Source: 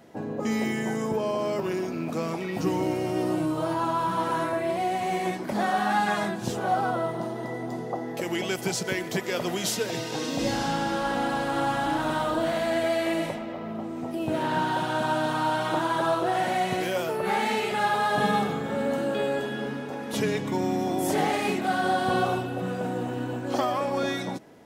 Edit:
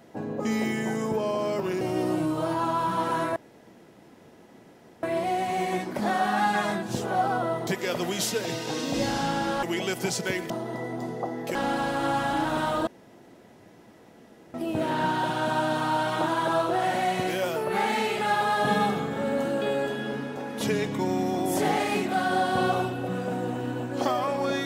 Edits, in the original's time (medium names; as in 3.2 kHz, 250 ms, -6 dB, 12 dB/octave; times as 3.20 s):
1.81–3.01 s: delete
4.56 s: insert room tone 1.67 s
7.20–8.25 s: swap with 9.12–11.08 s
12.40–14.07 s: room tone